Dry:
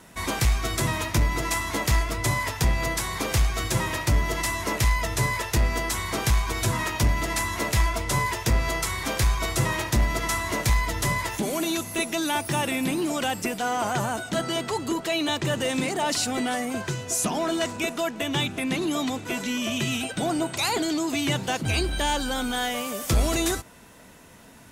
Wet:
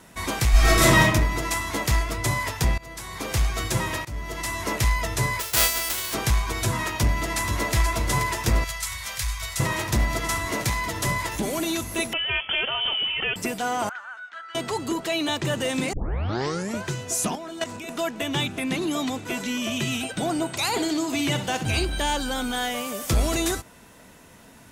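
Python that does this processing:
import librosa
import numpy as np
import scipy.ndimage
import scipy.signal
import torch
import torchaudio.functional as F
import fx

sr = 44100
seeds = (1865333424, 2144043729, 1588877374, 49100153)

y = fx.reverb_throw(x, sr, start_s=0.51, length_s=0.5, rt60_s=0.81, drr_db=-10.0)
y = fx.envelope_flatten(y, sr, power=0.1, at=(5.39, 6.13), fade=0.02)
y = fx.echo_throw(y, sr, start_s=6.96, length_s=0.79, ms=480, feedback_pct=85, wet_db=-7.0)
y = fx.tone_stack(y, sr, knobs='10-0-10', at=(8.64, 9.6))
y = fx.highpass(y, sr, hz=90.0, slope=12, at=(10.46, 11.06))
y = fx.freq_invert(y, sr, carrier_hz=3300, at=(12.13, 13.36))
y = fx.ladder_bandpass(y, sr, hz=1600.0, resonance_pct=65, at=(13.89, 14.55))
y = fx.level_steps(y, sr, step_db=12, at=(17.35, 17.89))
y = fx.room_flutter(y, sr, wall_m=10.7, rt60_s=0.39, at=(20.67, 21.85))
y = fx.edit(y, sr, fx.fade_in_from(start_s=2.78, length_s=0.7, floor_db=-22.5),
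    fx.fade_in_from(start_s=4.05, length_s=0.59, floor_db=-18.0),
    fx.tape_start(start_s=15.93, length_s=0.91), tone=tone)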